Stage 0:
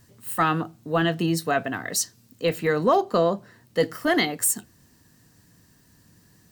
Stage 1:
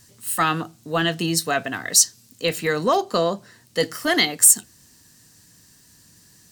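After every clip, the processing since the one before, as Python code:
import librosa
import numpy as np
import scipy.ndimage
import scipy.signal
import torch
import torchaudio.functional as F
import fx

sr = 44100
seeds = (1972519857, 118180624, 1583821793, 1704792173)

y = fx.peak_eq(x, sr, hz=7200.0, db=12.0, octaves=2.8)
y = y * librosa.db_to_amplitude(-1.0)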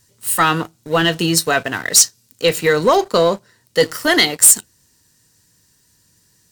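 y = x + 0.3 * np.pad(x, (int(2.1 * sr / 1000.0), 0))[:len(x)]
y = fx.leveller(y, sr, passes=2)
y = y * librosa.db_to_amplitude(-1.0)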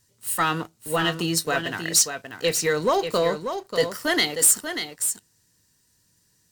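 y = x + 10.0 ** (-8.0 / 20.0) * np.pad(x, (int(588 * sr / 1000.0), 0))[:len(x)]
y = y * librosa.db_to_amplitude(-8.0)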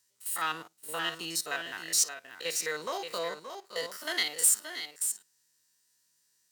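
y = fx.spec_steps(x, sr, hold_ms=50)
y = fx.highpass(y, sr, hz=1200.0, slope=6)
y = y * librosa.db_to_amplitude(-4.5)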